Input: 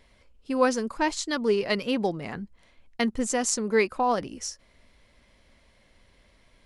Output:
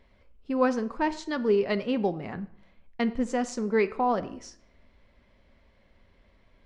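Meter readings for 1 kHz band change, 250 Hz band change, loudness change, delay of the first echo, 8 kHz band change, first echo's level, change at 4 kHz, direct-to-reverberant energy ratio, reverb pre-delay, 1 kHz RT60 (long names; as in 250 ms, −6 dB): −1.5 dB, 0.0 dB, −1.0 dB, no echo audible, −15.0 dB, no echo audible, −8.5 dB, 11.5 dB, 3 ms, 0.65 s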